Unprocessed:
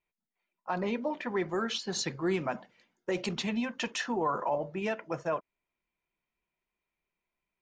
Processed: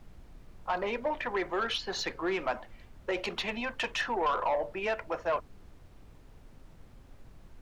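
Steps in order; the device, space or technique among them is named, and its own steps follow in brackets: aircraft cabin announcement (band-pass 480–3600 Hz; saturation -28 dBFS, distortion -15 dB; brown noise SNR 15 dB); trim +5.5 dB

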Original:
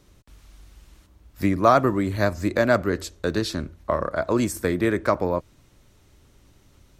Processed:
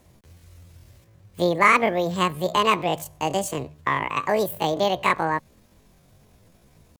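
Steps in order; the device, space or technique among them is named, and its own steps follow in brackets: chipmunk voice (pitch shift +10 st)

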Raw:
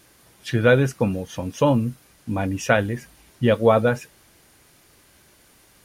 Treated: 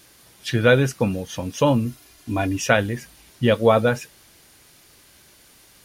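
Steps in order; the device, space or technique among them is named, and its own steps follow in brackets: 1.85–2.58 s: comb 2.9 ms; presence and air boost (peaking EQ 4.2 kHz +5 dB 1.7 oct; treble shelf 11 kHz +5.5 dB)

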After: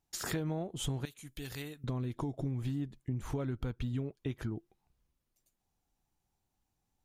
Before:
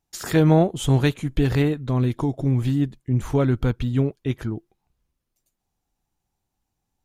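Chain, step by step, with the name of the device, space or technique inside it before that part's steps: 1.05–1.84 s: pre-emphasis filter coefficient 0.9; serial compression, peaks first (compression 6:1, threshold -24 dBFS, peak gain reduction 12.5 dB; compression 1.5:1, threshold -36 dBFS, peak gain reduction 5.5 dB); trim -3.5 dB

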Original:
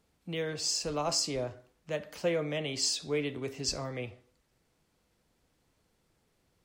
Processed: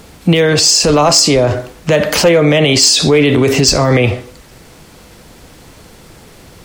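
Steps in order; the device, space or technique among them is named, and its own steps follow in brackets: loud club master (compression 1.5:1, threshold -36 dBFS, peak gain reduction 4.5 dB; hard clipper -27 dBFS, distortion -23 dB; loudness maximiser +35.5 dB); trim -1.5 dB

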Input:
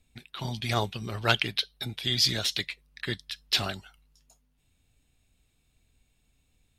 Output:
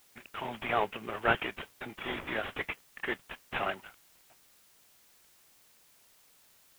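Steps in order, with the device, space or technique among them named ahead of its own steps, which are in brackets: army field radio (band-pass 390–3100 Hz; CVSD coder 16 kbps; white noise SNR 25 dB); trim +3.5 dB

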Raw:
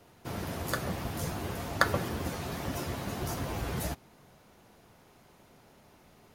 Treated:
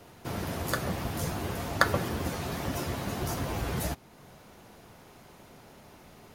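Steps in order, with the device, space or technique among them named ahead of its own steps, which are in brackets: parallel compression (in parallel at -2.5 dB: compression, threshold -51 dBFS, peak gain reduction 29 dB); on the sum: trim +1.5 dB

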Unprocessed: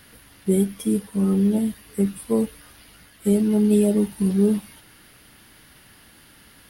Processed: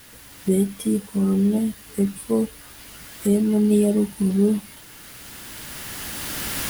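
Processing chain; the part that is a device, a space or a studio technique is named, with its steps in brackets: cheap recorder with automatic gain (white noise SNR 27 dB; recorder AGC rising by 9.8 dB/s)

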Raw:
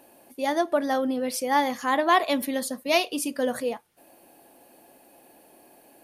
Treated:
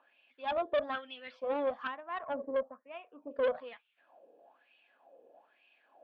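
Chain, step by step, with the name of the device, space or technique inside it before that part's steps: 1.87–3.31 s: inverse Chebyshev low-pass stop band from 6.6 kHz, stop band 80 dB; wah-wah guitar rig (wah-wah 1.1 Hz 460–2700 Hz, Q 6.2; valve stage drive 32 dB, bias 0.55; cabinet simulation 90–3700 Hz, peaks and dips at 110 Hz -8 dB, 350 Hz -6 dB, 860 Hz -5 dB, 2 kHz -6 dB, 3.4 kHz +7 dB); trim +8 dB

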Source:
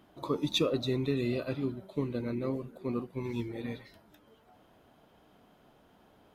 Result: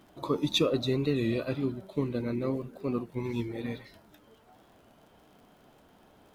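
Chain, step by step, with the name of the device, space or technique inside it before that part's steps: warped LP (warped record 33 1/3 rpm, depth 100 cents; crackle 61 per s -54 dBFS; pink noise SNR 42 dB); trim +2.5 dB

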